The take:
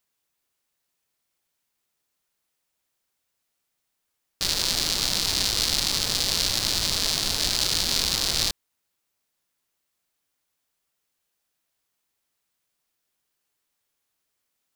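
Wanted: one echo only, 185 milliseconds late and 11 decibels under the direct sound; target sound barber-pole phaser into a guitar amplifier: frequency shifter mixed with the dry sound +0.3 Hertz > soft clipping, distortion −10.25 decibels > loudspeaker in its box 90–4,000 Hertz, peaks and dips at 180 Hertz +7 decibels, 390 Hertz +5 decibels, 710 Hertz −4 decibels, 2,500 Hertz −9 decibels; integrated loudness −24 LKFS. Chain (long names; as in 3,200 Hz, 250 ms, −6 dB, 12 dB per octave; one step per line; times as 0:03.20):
single-tap delay 185 ms −11 dB
frequency shifter mixed with the dry sound +0.3 Hz
soft clipping −17.5 dBFS
loudspeaker in its box 90–4,000 Hz, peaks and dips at 180 Hz +7 dB, 390 Hz +5 dB, 710 Hz −4 dB, 2,500 Hz −9 dB
level +9 dB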